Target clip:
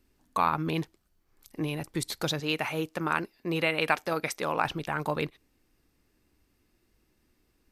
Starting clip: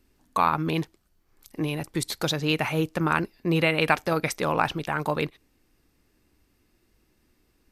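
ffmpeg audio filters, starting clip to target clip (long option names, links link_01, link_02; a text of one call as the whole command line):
ffmpeg -i in.wav -filter_complex "[0:a]asettb=1/sr,asplit=3[link_01][link_02][link_03];[link_01]atrim=end=2.404[link_04];[link_02]atrim=start=2.4:end=4.65,asetpts=PTS-STARTPTS,afade=type=in:duration=0.004:curve=qsin,afade=type=out:start_time=2.246:duration=0.004:curve=qsin,lowshelf=frequency=160:gain=-12[link_05];[link_03]atrim=start=4.646[link_06];[link_04][link_05]acrossfade=duration=0.004:curve1=hsin:curve2=qsin[link_07];[link_07][link_06]acrossfade=duration=0.004:curve1=qsin:curve2=hsin,volume=-3.5dB" out.wav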